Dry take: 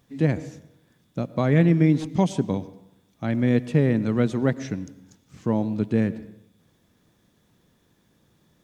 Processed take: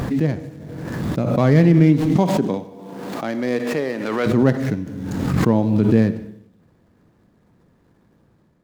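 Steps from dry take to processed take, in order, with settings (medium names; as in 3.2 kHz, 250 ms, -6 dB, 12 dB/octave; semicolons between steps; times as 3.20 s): median filter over 15 samples; level rider gain up to 6 dB; 2.12–4.26 s: high-pass 160 Hz -> 650 Hz 12 dB/octave; reverberation RT60 0.45 s, pre-delay 27 ms, DRR 14 dB; swell ahead of each attack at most 29 dB/s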